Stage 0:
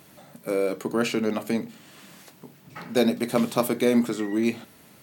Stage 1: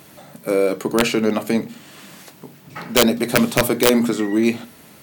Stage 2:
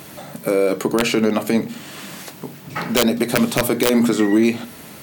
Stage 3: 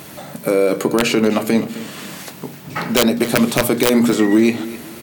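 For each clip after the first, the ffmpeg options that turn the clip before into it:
-af "aeval=exprs='(mod(3.76*val(0)+1,2)-1)/3.76':c=same,bandreject=f=60:t=h:w=6,bandreject=f=120:t=h:w=6,bandreject=f=180:t=h:w=6,bandreject=f=240:t=h:w=6,volume=2.24"
-af "alimiter=limit=0.2:level=0:latency=1:release=241,volume=2.24"
-af "aecho=1:1:259|518|777:0.158|0.0523|0.0173,volume=1.26"

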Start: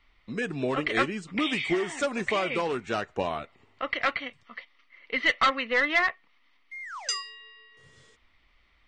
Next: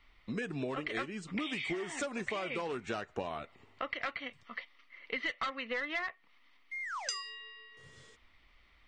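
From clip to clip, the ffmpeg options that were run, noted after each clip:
-af "acompressor=threshold=0.02:ratio=6"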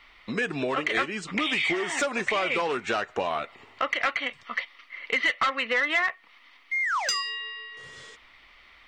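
-filter_complex "[0:a]asplit=2[s0][s1];[s1]highpass=f=720:p=1,volume=4.47,asoftclip=type=tanh:threshold=0.119[s2];[s0][s2]amix=inputs=2:normalize=0,lowpass=f=5400:p=1,volume=0.501,volume=2"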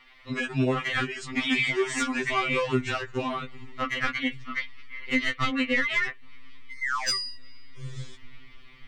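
-af "asubboost=boost=11.5:cutoff=200,afftfilt=real='re*2.45*eq(mod(b,6),0)':imag='im*2.45*eq(mod(b,6),0)':win_size=2048:overlap=0.75,volume=1.26"

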